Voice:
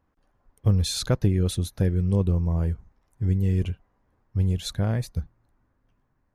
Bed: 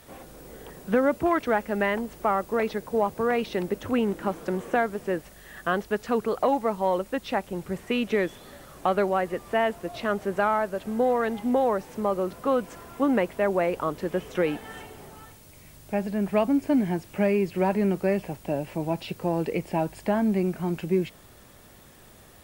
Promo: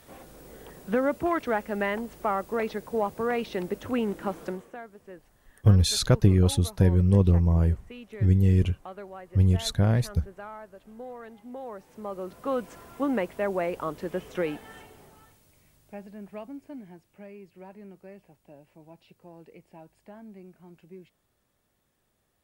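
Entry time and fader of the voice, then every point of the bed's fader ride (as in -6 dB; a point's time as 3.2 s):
5.00 s, +2.5 dB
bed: 4.47 s -3 dB
4.73 s -18 dB
11.48 s -18 dB
12.58 s -4 dB
14.43 s -4 dB
17.22 s -22.5 dB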